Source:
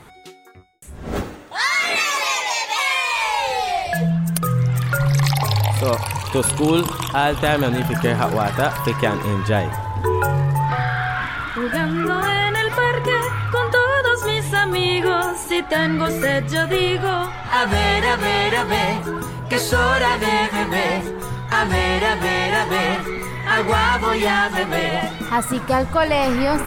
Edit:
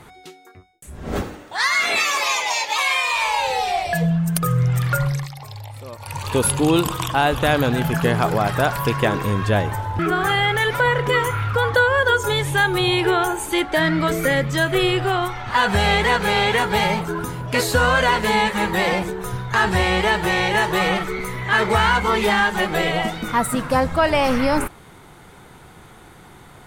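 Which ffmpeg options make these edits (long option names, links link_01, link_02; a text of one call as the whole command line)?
ffmpeg -i in.wav -filter_complex "[0:a]asplit=4[link_01][link_02][link_03][link_04];[link_01]atrim=end=5.28,asetpts=PTS-STARTPTS,afade=type=out:start_time=4.94:duration=0.34:silence=0.141254[link_05];[link_02]atrim=start=5.28:end=5.98,asetpts=PTS-STARTPTS,volume=-17dB[link_06];[link_03]atrim=start=5.98:end=9.992,asetpts=PTS-STARTPTS,afade=type=in:duration=0.34:silence=0.141254[link_07];[link_04]atrim=start=11.968[link_08];[link_05][link_06][link_07]concat=n=3:v=0:a=1[link_09];[link_09][link_08]acrossfade=duration=0.004:curve1=hsin:curve2=hsin" out.wav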